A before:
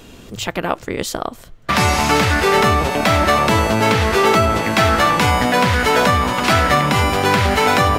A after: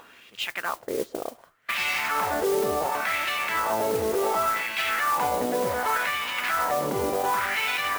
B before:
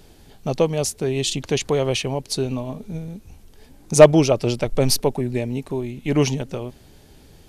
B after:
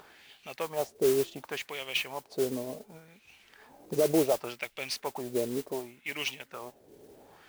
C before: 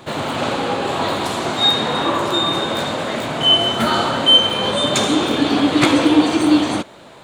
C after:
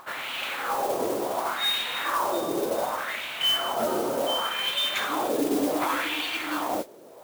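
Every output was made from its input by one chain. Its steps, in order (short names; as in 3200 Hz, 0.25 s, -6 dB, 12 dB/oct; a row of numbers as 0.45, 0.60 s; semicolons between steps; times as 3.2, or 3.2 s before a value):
wah 0.68 Hz 410–2700 Hz, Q 2.4; limiter -17 dBFS; upward compressor, threshold -46 dBFS; modulation noise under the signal 13 dB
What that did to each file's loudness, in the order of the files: -10.0, -11.5, -10.5 LU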